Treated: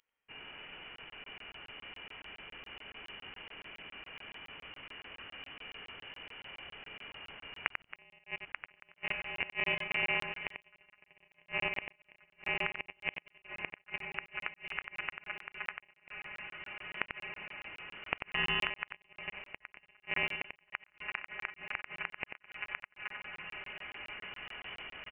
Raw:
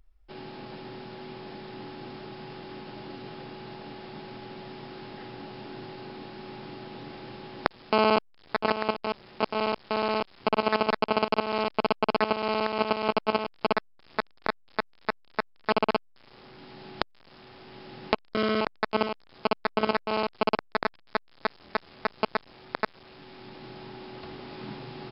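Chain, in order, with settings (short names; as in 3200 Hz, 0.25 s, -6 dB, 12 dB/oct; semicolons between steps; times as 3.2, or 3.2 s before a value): reverse delay 0.152 s, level -9.5 dB; HPF 360 Hz 12 dB/oct; bell 530 Hz -7 dB 0.74 oct; diffused feedback echo 1.432 s, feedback 57%, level -12 dB; flipped gate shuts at -14 dBFS, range -34 dB; on a send: echo 92 ms -7.5 dB; on the sum: inverted band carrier 3200 Hz; crackling interface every 0.14 s, samples 1024, zero, from 0.96; gain -2.5 dB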